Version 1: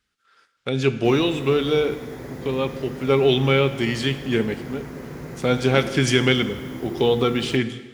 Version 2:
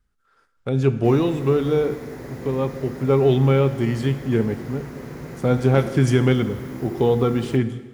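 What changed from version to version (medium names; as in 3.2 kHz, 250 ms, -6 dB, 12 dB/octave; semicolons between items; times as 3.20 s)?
speech: remove frequency weighting D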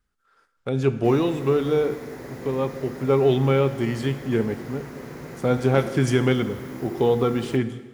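master: add bass shelf 190 Hz -7 dB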